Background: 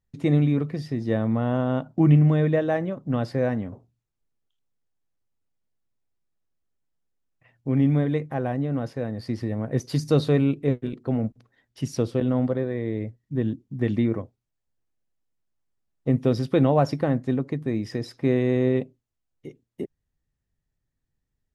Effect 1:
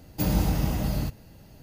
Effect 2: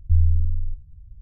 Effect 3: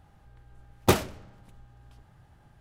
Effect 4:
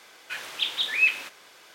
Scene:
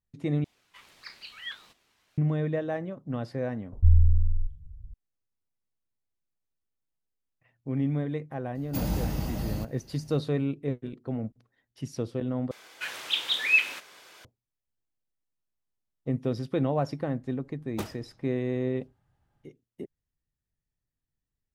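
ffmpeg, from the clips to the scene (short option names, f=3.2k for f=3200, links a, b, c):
-filter_complex "[4:a]asplit=2[a][b];[0:a]volume=-7.5dB[c];[a]aeval=exprs='val(0)*sin(2*PI*940*n/s+940*0.5/1.6*sin(2*PI*1.6*n/s))':c=same[d];[1:a]acontrast=49[e];[c]asplit=3[f][g][h];[f]atrim=end=0.444[i];[d]atrim=end=1.74,asetpts=PTS-STARTPTS,volume=-15dB[j];[g]atrim=start=2.176:end=12.514[k];[b]atrim=end=1.74,asetpts=PTS-STARTPTS,volume=-0.5dB[l];[h]atrim=start=14.246[m];[2:a]atrim=end=1.21,asetpts=PTS-STARTPTS,volume=-1dB,afade=t=in:d=0.004:c=hsin,afade=t=out:st=1.206:d=0.004:c=hsin,adelay=164493S[n];[e]atrim=end=1.62,asetpts=PTS-STARTPTS,volume=-11dB,afade=t=in:d=0.004:c=hsin,afade=t=out:st=1.616:d=0.004:c=hsin,adelay=8550[o];[3:a]atrim=end=2.6,asetpts=PTS-STARTPTS,volume=-15dB,afade=t=in:d=0.004:c=hsin,afade=t=out:st=2.596:d=0.004:c=hsin,adelay=16900[p];[i][j]acrossfade=d=0.004:c1=hsin:c2=hsin[q];[q][k]acrossfade=d=0.004:c1=hsin:c2=hsin[r];[r][l]acrossfade=d=0.004:c1=hsin:c2=hsin[s];[s][m]acrossfade=d=0.004:c1=hsin:c2=hsin[t];[t][n][o][p]amix=inputs=4:normalize=0"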